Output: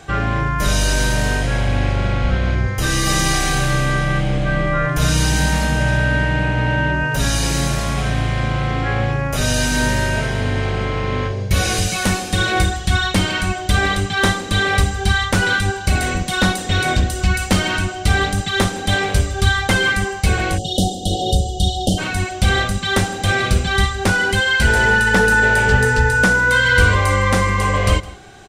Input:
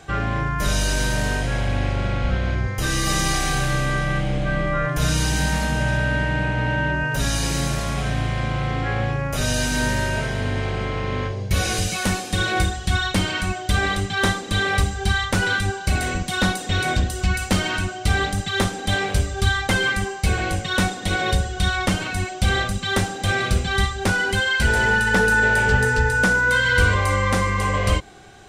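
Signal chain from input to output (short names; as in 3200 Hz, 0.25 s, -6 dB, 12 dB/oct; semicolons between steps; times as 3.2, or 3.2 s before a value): echo 0.161 s -19.5 dB; spectral delete 20.58–21.98, 800–2800 Hz; gain +4 dB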